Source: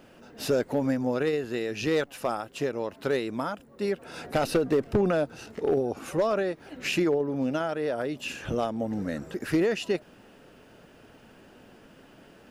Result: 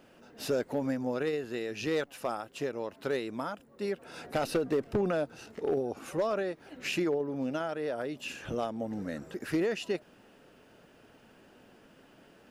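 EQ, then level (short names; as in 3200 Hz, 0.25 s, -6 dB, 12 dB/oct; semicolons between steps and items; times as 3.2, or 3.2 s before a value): low shelf 130 Hz -4.5 dB; -4.5 dB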